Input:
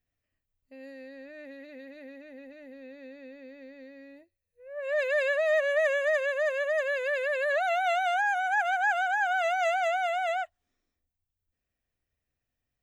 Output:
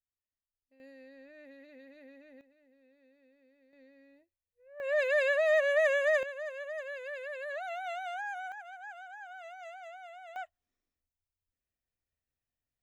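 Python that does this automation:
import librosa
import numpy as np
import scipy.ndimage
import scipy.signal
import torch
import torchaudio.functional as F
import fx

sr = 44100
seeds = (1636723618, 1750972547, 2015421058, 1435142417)

y = fx.gain(x, sr, db=fx.steps((0.0, -18.5), (0.8, -8.0), (2.41, -19.5), (3.73, -11.5), (4.8, -1.0), (6.23, -11.5), (8.52, -20.0), (10.36, -8.5)))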